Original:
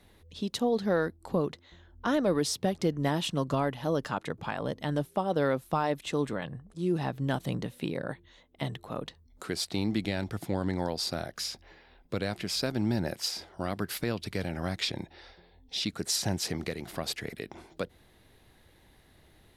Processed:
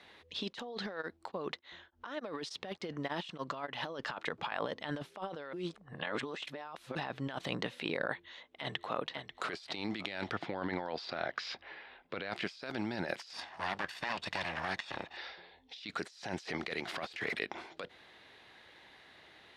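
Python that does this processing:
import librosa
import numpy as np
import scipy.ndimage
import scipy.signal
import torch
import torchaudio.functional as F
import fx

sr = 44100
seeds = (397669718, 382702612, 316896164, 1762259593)

y = fx.tremolo_abs(x, sr, hz=3.4, at=(0.89, 3.85), fade=0.02)
y = fx.echo_throw(y, sr, start_s=8.07, length_s=0.93, ms=540, feedback_pct=45, wet_db=-12.0)
y = fx.lowpass(y, sr, hz=3600.0, slope=12, at=(10.32, 12.32))
y = fx.lower_of_two(y, sr, delay_ms=1.1, at=(13.33, 15.17))
y = fx.law_mismatch(y, sr, coded='mu', at=(16.96, 17.39))
y = fx.edit(y, sr, fx.reverse_span(start_s=5.53, length_s=1.42), tone=tone)
y = fx.highpass(y, sr, hz=1400.0, slope=6)
y = fx.over_compress(y, sr, threshold_db=-45.0, ratio=-1.0)
y = scipy.signal.sosfilt(scipy.signal.butter(2, 3500.0, 'lowpass', fs=sr, output='sos'), y)
y = y * 10.0 ** (6.0 / 20.0)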